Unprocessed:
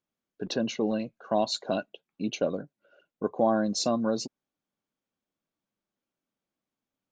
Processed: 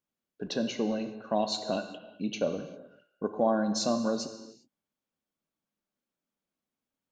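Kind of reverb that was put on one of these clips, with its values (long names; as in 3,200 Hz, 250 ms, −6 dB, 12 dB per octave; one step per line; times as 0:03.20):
reverb whose tail is shaped and stops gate 420 ms falling, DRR 7 dB
level −2.5 dB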